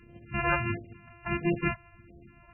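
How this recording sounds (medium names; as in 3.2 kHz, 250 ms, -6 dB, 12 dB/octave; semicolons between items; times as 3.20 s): a buzz of ramps at a fixed pitch in blocks of 128 samples; phasing stages 2, 1.5 Hz, lowest notch 260–1200 Hz; MP3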